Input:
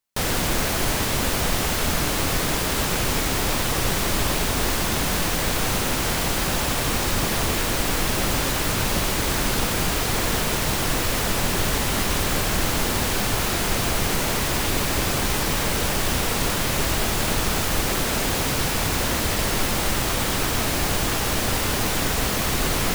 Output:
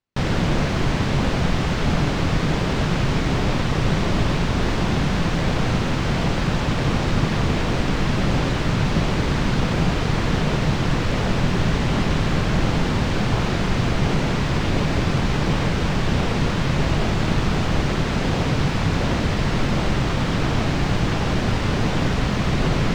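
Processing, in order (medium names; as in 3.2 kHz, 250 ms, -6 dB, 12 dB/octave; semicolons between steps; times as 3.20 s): peaking EQ 150 Hz +7.5 dB 1.1 oct; in parallel at -9 dB: decimation with a swept rate 38×, swing 100% 1.4 Hz; on the sum: distance through air 150 m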